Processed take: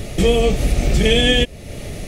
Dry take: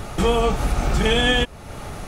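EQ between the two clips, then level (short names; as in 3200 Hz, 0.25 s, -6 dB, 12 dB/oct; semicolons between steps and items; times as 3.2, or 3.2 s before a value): band shelf 1100 Hz -15 dB 1.2 oct; +4.5 dB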